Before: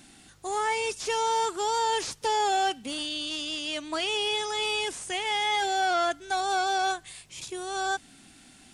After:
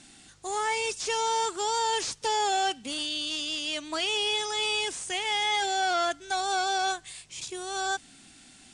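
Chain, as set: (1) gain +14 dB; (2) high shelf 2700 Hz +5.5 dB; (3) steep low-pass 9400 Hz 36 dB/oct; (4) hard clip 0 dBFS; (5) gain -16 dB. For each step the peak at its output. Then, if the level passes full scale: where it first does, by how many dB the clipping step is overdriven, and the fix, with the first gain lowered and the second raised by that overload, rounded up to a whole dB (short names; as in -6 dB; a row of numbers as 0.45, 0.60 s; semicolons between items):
-3.5, -2.0, -2.0, -2.0, -18.0 dBFS; no overload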